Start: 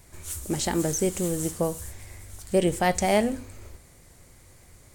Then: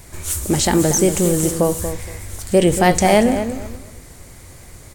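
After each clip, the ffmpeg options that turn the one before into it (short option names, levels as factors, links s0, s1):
-filter_complex "[0:a]asplit=2[s0][s1];[s1]alimiter=limit=0.0794:level=0:latency=1:release=17,volume=1.06[s2];[s0][s2]amix=inputs=2:normalize=0,asplit=2[s3][s4];[s4]adelay=234,lowpass=f=2000:p=1,volume=0.355,asplit=2[s5][s6];[s6]adelay=234,lowpass=f=2000:p=1,volume=0.24,asplit=2[s7][s8];[s8]adelay=234,lowpass=f=2000:p=1,volume=0.24[s9];[s3][s5][s7][s9]amix=inputs=4:normalize=0,volume=1.88"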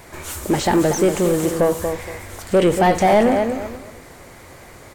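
-filter_complex "[0:a]aexciter=amount=1.9:drive=5.4:freq=12000,asplit=2[s0][s1];[s1]highpass=f=720:p=1,volume=10,asoftclip=type=tanh:threshold=0.891[s2];[s0][s2]amix=inputs=2:normalize=0,lowpass=f=1200:p=1,volume=0.501,volume=0.631"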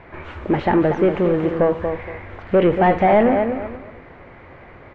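-af "lowpass=f=2600:w=0.5412,lowpass=f=2600:w=1.3066"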